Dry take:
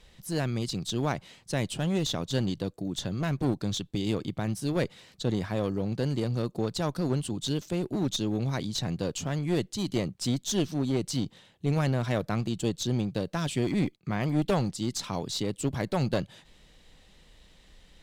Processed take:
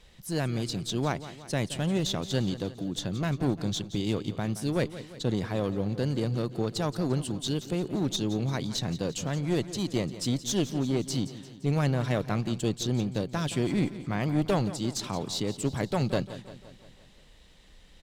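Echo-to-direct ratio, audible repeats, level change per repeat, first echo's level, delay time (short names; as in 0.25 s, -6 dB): -13.0 dB, 5, -5.0 dB, -14.5 dB, 0.173 s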